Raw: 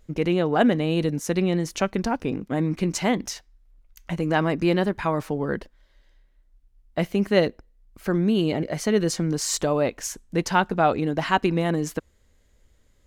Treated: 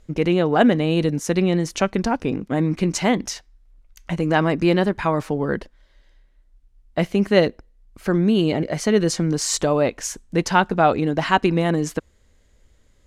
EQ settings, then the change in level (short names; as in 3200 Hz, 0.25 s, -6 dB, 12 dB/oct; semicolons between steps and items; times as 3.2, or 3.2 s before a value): LPF 11000 Hz 12 dB/oct; +3.5 dB